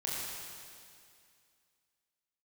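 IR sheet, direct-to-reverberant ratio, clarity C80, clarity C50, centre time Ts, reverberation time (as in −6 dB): −6.5 dB, −1.5 dB, −2.5 dB, 151 ms, 2.3 s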